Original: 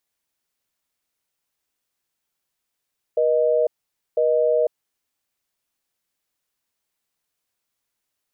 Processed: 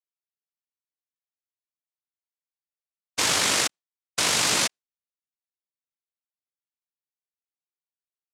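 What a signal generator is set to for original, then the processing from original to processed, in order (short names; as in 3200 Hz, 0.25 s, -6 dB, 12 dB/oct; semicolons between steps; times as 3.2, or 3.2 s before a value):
call progress tone busy tone, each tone -18.5 dBFS 1.58 s
gate with hold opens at -15 dBFS; AM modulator 190 Hz, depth 85%; noise vocoder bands 1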